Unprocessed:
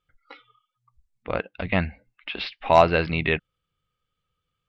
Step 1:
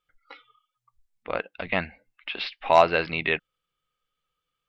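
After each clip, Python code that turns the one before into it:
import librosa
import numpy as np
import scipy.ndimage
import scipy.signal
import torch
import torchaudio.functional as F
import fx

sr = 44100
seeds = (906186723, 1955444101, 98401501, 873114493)

y = fx.peak_eq(x, sr, hz=82.0, db=-13.5, octaves=2.9)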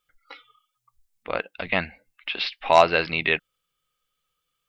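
y = fx.high_shelf(x, sr, hz=4400.0, db=9.5)
y = F.gain(torch.from_numpy(y), 1.0).numpy()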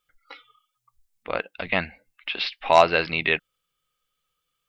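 y = x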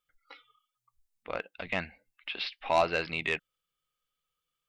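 y = 10.0 ** (-8.0 / 20.0) * np.tanh(x / 10.0 ** (-8.0 / 20.0))
y = F.gain(torch.from_numpy(y), -7.5).numpy()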